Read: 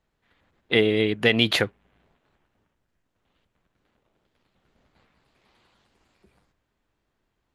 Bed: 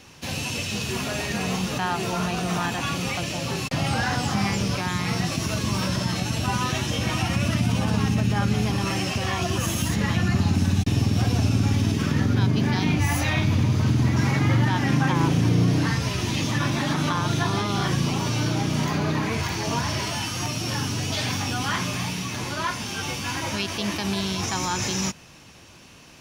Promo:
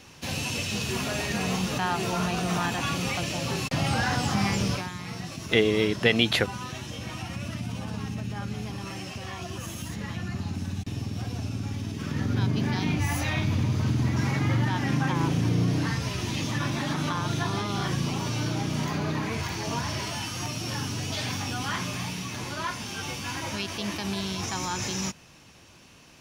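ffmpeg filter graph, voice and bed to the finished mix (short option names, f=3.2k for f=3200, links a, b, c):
-filter_complex "[0:a]adelay=4800,volume=-2dB[a];[1:a]volume=5dB,afade=t=out:st=4.7:d=0.21:silence=0.334965,afade=t=in:st=11.93:d=0.46:silence=0.473151[b];[a][b]amix=inputs=2:normalize=0"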